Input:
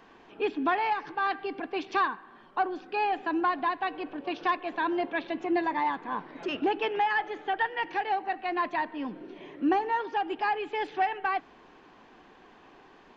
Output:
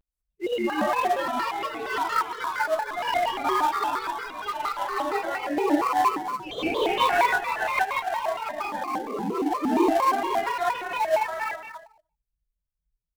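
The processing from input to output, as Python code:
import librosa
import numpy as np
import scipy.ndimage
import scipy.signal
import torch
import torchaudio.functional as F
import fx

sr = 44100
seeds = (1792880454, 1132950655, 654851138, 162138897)

p1 = fx.bin_expand(x, sr, power=3.0)
p2 = fx.echo_pitch(p1, sr, ms=654, semitones=2, count=2, db_per_echo=-6.0)
p3 = p2 + fx.echo_stepped(p2, sr, ms=143, hz=2900.0, octaves=-1.4, feedback_pct=70, wet_db=-5.5, dry=0)
p4 = fx.rev_gated(p3, sr, seeds[0], gate_ms=220, shape='rising', drr_db=-8.0)
p5 = fx.sample_hold(p4, sr, seeds[1], rate_hz=2900.0, jitter_pct=20)
p6 = p4 + F.gain(torch.from_numpy(p5), -11.5).numpy()
y = fx.vibrato_shape(p6, sr, shape='square', rate_hz=4.3, depth_cents=250.0)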